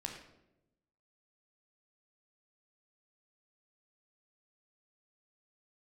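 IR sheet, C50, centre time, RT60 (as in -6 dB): 5.0 dB, 31 ms, 0.90 s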